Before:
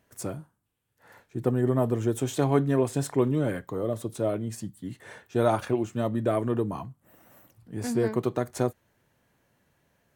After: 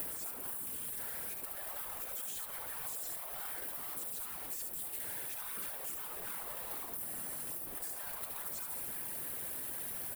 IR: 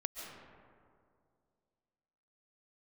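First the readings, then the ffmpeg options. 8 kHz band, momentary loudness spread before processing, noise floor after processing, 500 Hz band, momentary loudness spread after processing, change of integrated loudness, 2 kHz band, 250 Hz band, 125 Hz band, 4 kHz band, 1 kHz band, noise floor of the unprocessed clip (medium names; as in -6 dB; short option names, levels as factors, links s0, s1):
+2.0 dB, 14 LU, -44 dBFS, -26.0 dB, 1 LU, -10.5 dB, -6.5 dB, -28.5 dB, -30.0 dB, -4.0 dB, -14.5 dB, -72 dBFS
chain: -filter_complex "[0:a]aeval=exprs='val(0)+0.5*0.0447*sgn(val(0))':c=same,aexciter=amount=9.2:drive=4.1:freq=8900,asplit=2[s0][s1];[s1]aecho=0:1:72:0.473[s2];[s0][s2]amix=inputs=2:normalize=0,afftfilt=real='re*lt(hypot(re,im),0.126)':imag='im*lt(hypot(re,im),0.126)':win_size=1024:overlap=0.75,asplit=2[s3][s4];[s4]adelay=638,lowpass=f=2200:p=1,volume=0.0794,asplit=2[s5][s6];[s6]adelay=638,lowpass=f=2200:p=1,volume=0.26[s7];[s5][s7]amix=inputs=2:normalize=0[s8];[s3][s8]amix=inputs=2:normalize=0,afftfilt=real='hypot(re,im)*cos(2*PI*random(0))':imag='hypot(re,im)*sin(2*PI*random(1))':win_size=512:overlap=0.75,acompressor=threshold=0.0112:ratio=6"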